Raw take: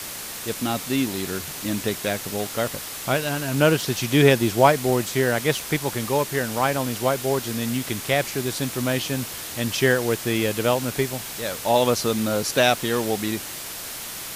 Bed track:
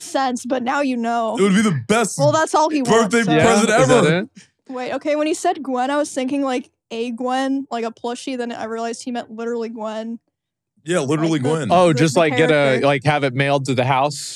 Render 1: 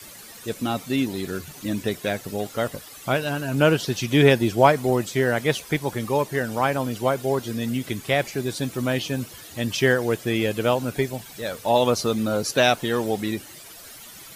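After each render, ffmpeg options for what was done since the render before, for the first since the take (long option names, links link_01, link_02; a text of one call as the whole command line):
ffmpeg -i in.wav -af "afftdn=noise_reduction=13:noise_floor=-34" out.wav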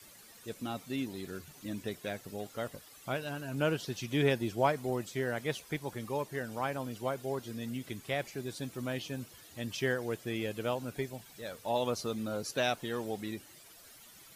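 ffmpeg -i in.wav -af "volume=-12.5dB" out.wav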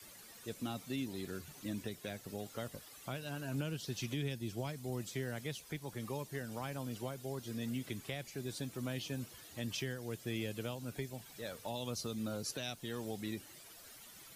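ffmpeg -i in.wav -filter_complex "[0:a]acrossover=split=230|3000[link_01][link_02][link_03];[link_02]acompressor=threshold=-41dB:ratio=6[link_04];[link_01][link_04][link_03]amix=inputs=3:normalize=0,alimiter=level_in=4.5dB:limit=-24dB:level=0:latency=1:release=410,volume=-4.5dB" out.wav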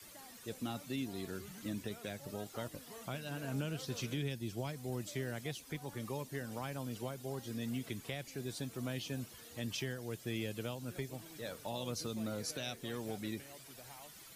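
ffmpeg -i in.wav -i bed.wav -filter_complex "[1:a]volume=-39dB[link_01];[0:a][link_01]amix=inputs=2:normalize=0" out.wav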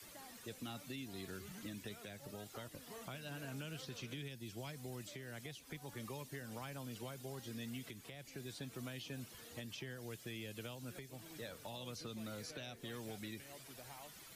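ffmpeg -i in.wav -filter_complex "[0:a]acrossover=split=130|1400|3800[link_01][link_02][link_03][link_04];[link_01]acompressor=threshold=-55dB:ratio=4[link_05];[link_02]acompressor=threshold=-47dB:ratio=4[link_06];[link_03]acompressor=threshold=-49dB:ratio=4[link_07];[link_04]acompressor=threshold=-56dB:ratio=4[link_08];[link_05][link_06][link_07][link_08]amix=inputs=4:normalize=0,alimiter=level_in=12dB:limit=-24dB:level=0:latency=1:release=326,volume=-12dB" out.wav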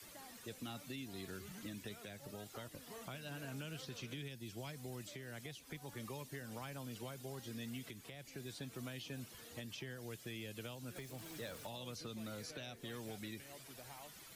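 ffmpeg -i in.wav -filter_complex "[0:a]asettb=1/sr,asplit=3[link_01][link_02][link_03];[link_01]atrim=end=10.964[link_04];[link_02]atrim=start=10.96:end=11.67,asetpts=PTS-STARTPTS,afade=type=in:duration=0.004:curve=qsin,afade=type=out:start_time=0.706:duration=0.004:curve=qsin,aeval=exprs='val(0)+0.5*0.00211*sgn(val(0))':channel_layout=same[link_05];[link_03]atrim=start=11.666[link_06];[link_04][link_05]acrossfade=duration=0.004:curve1=hsin:curve2=qsin[link_07];[link_07][link_06]acrossfade=duration=0.004:curve1=qsin:curve2=hsin" out.wav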